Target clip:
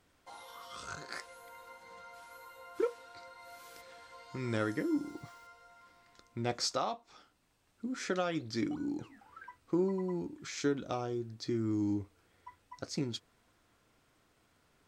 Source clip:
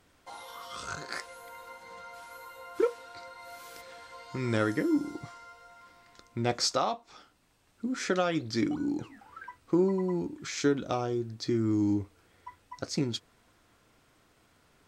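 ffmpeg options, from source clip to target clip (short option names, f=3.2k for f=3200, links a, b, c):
-filter_complex "[0:a]asettb=1/sr,asplit=3[a][b][c];[a]atrim=end=4.804[d];[b]atrim=start=4.8:end=5.47,asetpts=PTS-STARTPTS,afade=t=in:d=0.004:c=qsin,afade=t=out:st=0.666:d=0.004:c=qsin,aeval=exprs='val(0)*gte(abs(val(0)),0.00178)':c=same[e];[c]atrim=start=5.466[f];[d][e]acrossfade=d=0.004:c1=hsin:c2=qsin[g];[g][f]acrossfade=d=0.004:c1=qsin:c2=hsin,volume=-5.5dB"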